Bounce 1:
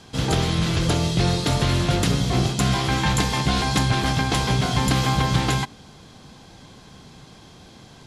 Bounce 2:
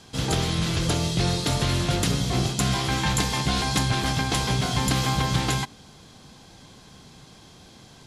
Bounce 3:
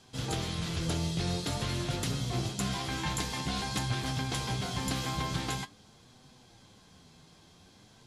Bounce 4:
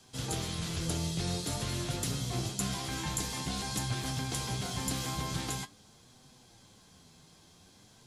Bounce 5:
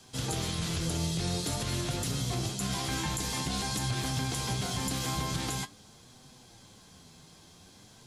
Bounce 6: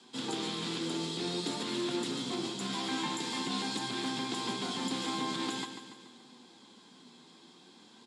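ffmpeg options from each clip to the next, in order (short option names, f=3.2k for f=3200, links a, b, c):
-af "highshelf=f=4.4k:g=5.5,volume=-3.5dB"
-af "flanger=delay=7.8:depth=4.5:regen=54:speed=0.48:shape=sinusoidal,volume=-5dB"
-filter_complex "[0:a]acrossover=split=330|630|6100[a][b][c][d];[c]alimiter=level_in=7dB:limit=-24dB:level=0:latency=1:release=20,volume=-7dB[e];[d]acontrast=79[f];[a][b][e][f]amix=inputs=4:normalize=0,volume=-2dB"
-af "alimiter=level_in=2dB:limit=-24dB:level=0:latency=1:release=76,volume=-2dB,volume=4dB"
-af "highpass=f=200:w=0.5412,highpass=f=200:w=1.3066,equalizer=f=240:t=q:w=4:g=7,equalizer=f=350:t=q:w=4:g=6,equalizer=f=630:t=q:w=4:g=-6,equalizer=f=950:t=q:w=4:g=5,equalizer=f=3.6k:t=q:w=4:g=5,equalizer=f=6.1k:t=q:w=4:g=-9,lowpass=f=8k:w=0.5412,lowpass=f=8k:w=1.3066,aecho=1:1:143|286|429|572|715|858:0.335|0.181|0.0977|0.0527|0.0285|0.0154,volume=-2.5dB"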